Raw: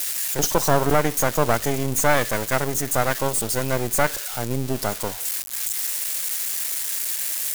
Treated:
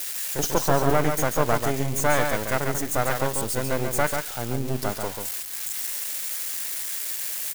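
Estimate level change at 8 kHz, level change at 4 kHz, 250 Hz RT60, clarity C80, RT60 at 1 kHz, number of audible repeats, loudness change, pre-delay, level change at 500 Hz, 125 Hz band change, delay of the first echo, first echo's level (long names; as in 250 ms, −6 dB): −5.0 dB, −3.5 dB, no reverb audible, no reverb audible, no reverb audible, 1, −3.0 dB, no reverb audible, −2.0 dB, −1.5 dB, 140 ms, −5.5 dB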